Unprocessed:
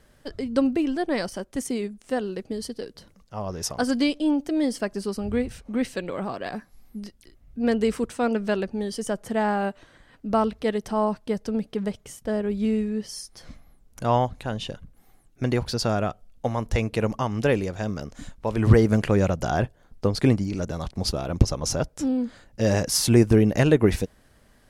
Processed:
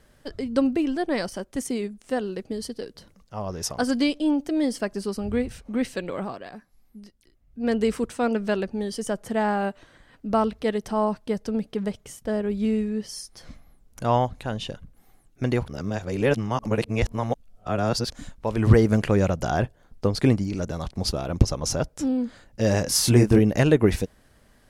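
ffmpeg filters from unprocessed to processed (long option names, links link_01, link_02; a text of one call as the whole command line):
ffmpeg -i in.wav -filter_complex "[0:a]asettb=1/sr,asplit=3[link_01][link_02][link_03];[link_01]atrim=end=22.834[link_04];[link_02]atrim=start=22.83:end=23.39,asetpts=PTS-STARTPTS,afade=type=in:duration=0.004:curve=qsin,afade=type=out:start_time=0.556:duration=0.004:curve=qsin,asplit=2[link_05][link_06];[link_06]adelay=24,volume=-4.5dB[link_07];[link_05][link_07]amix=inputs=2:normalize=0,atrim=end_sample=24696[link_08];[link_03]atrim=start=23.386[link_09];[link_04][link_08]acrossfade=duration=0.004:curve1=hsin:curve2=qsin[link_10];[link_10][link_09]acrossfade=duration=0.004:curve1=qsin:curve2=hsin,asplit=5[link_11][link_12][link_13][link_14][link_15];[link_11]atrim=end=6.46,asetpts=PTS-STARTPTS,afade=type=out:start_time=6.2:duration=0.26:silence=0.375837[link_16];[link_12]atrim=start=6.46:end=7.5,asetpts=PTS-STARTPTS,volume=-8.5dB[link_17];[link_13]atrim=start=7.5:end=15.682,asetpts=PTS-STARTPTS,afade=type=in:duration=0.26:silence=0.375837[link_18];[link_14]atrim=start=15.678:end=18.102,asetpts=PTS-STARTPTS,areverse[link_19];[link_15]atrim=start=18.098[link_20];[link_16][link_17][link_18]concat=n=3:v=0:a=1[link_21];[link_21][link_19]acrossfade=duration=0.004:curve1=hsin:curve2=hsin[link_22];[link_22][link_20]acrossfade=duration=0.004:curve1=hsin:curve2=hsin" out.wav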